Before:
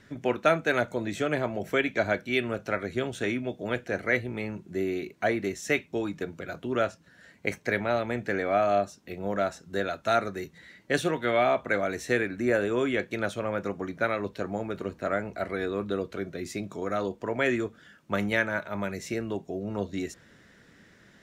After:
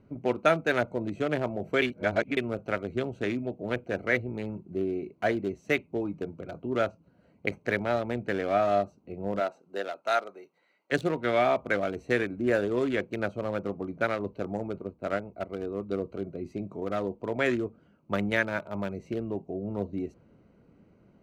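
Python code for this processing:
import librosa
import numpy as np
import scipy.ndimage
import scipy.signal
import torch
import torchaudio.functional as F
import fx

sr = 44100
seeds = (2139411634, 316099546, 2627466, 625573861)

y = fx.highpass(x, sr, hz=fx.line((9.39, 330.0), (10.91, 990.0)), slope=12, at=(9.39, 10.91), fade=0.02)
y = fx.upward_expand(y, sr, threshold_db=-43.0, expansion=1.5, at=(14.78, 15.92))
y = fx.edit(y, sr, fx.reverse_span(start_s=1.82, length_s=0.55), tone=tone)
y = fx.wiener(y, sr, points=25)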